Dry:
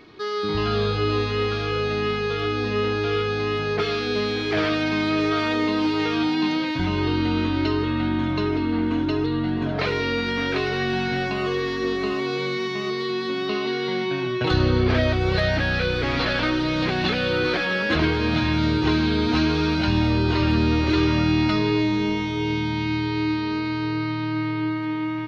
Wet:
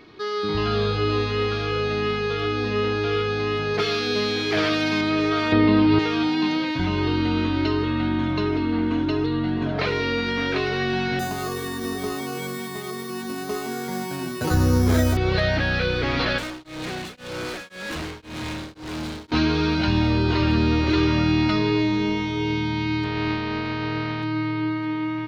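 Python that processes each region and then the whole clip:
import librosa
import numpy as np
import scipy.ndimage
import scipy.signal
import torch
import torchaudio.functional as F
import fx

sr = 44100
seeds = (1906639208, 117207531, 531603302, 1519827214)

y = fx.chain(x, sr, fx.highpass(hz=77.0, slope=12),
    fx.high_shelf(hz=5500.0, db=11.0), at=(3.74, 5.01))
y = fx.chain(y, sr, fx.bass_treble(bass_db=11, treble_db=-8),
    fx.resample_bad(factor=4, down='none', up='filtered'),
    fx.env_flatten(amount_pct=100), at=(5.52, 5.99))
y = fx.chain(y, sr, fx.air_absorb(metres=440.0),
    fx.resample_bad(factor=8, down='filtered', up='hold'),
    fx.doubler(ms=12.0, db=-3.5), at=(11.19, 15.17))
y = fx.chain(y, sr, fx.overload_stage(gain_db=28.5),
    fx.tremolo_abs(hz=1.9), at=(16.38, 19.32))
y = fx.spec_flatten(y, sr, power=0.56, at=(23.03, 24.22), fade=0.02)
y = fx.air_absorb(y, sr, metres=280.0, at=(23.03, 24.22), fade=0.02)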